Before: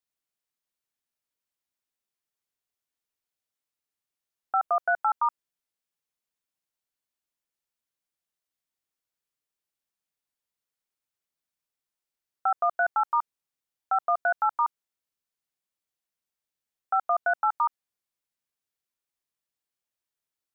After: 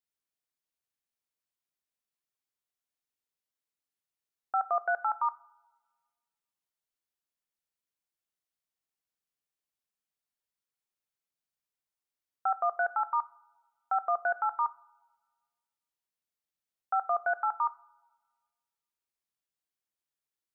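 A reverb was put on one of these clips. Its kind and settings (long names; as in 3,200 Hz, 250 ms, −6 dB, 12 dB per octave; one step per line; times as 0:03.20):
coupled-rooms reverb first 0.48 s, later 1.5 s, from −17 dB, DRR 14 dB
level −4.5 dB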